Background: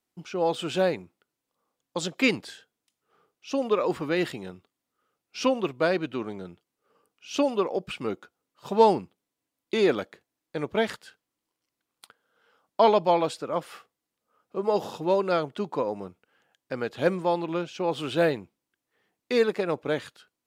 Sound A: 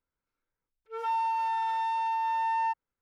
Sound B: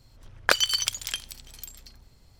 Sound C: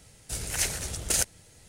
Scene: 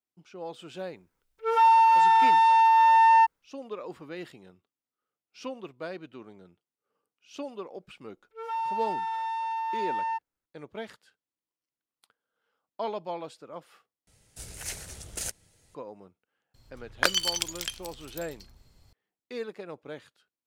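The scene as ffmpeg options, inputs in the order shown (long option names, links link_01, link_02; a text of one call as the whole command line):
ffmpeg -i bed.wav -i cue0.wav -i cue1.wav -i cue2.wav -filter_complex "[1:a]asplit=2[link_01][link_02];[0:a]volume=-13.5dB[link_03];[link_01]dynaudnorm=framelen=150:gausssize=5:maxgain=12dB[link_04];[link_03]asplit=2[link_05][link_06];[link_05]atrim=end=14.074[link_07];[3:a]atrim=end=1.68,asetpts=PTS-STARTPTS,volume=-9dB[link_08];[link_06]atrim=start=15.746[link_09];[link_04]atrim=end=3.01,asetpts=PTS-STARTPTS,volume=-1.5dB,afade=type=in:duration=0.004:curve=hsin,afade=type=out:start_time=3.006:duration=0.004:curve=hsin,adelay=530[link_10];[link_02]atrim=end=3.01,asetpts=PTS-STARTPTS,volume=-2dB,afade=type=in:duration=0.004:curve=hsin,afade=type=out:start_time=3.006:duration=0.004:curve=hsin,adelay=7450[link_11];[2:a]atrim=end=2.39,asetpts=PTS-STARTPTS,volume=-3dB,afade=type=in:duration=0.004:curve=hsin,afade=type=out:start_time=2.386:duration=0.004:curve=hsin,adelay=16540[link_12];[link_07][link_08]acrossfade=duration=0.004:curve1=hsin:curve2=hsin[link_13];[link_13][link_09]acrossfade=duration=0.004:curve1=hsin:curve2=hsin[link_14];[link_14][link_10][link_11][link_12]amix=inputs=4:normalize=0" out.wav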